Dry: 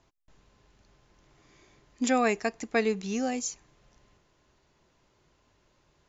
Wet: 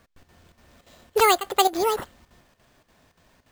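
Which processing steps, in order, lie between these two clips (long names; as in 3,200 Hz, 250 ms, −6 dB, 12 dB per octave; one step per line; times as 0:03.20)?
square-wave tremolo 2 Hz, depth 65%, duty 80%
wrong playback speed 45 rpm record played at 78 rpm
bad sample-rate conversion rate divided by 4×, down none, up hold
level +7.5 dB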